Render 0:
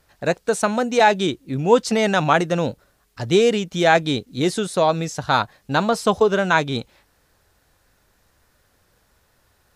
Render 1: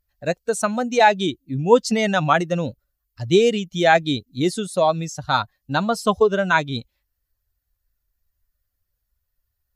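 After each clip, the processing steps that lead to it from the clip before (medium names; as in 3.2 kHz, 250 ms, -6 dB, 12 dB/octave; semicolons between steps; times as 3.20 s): expander on every frequency bin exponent 1.5; trim +2 dB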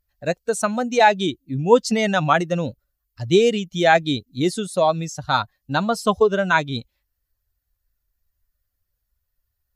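no audible change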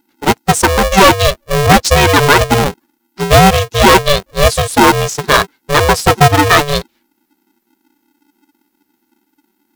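in parallel at -4 dB: sine folder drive 10 dB, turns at -1.5 dBFS; on the sum: polarity switched at an audio rate 290 Hz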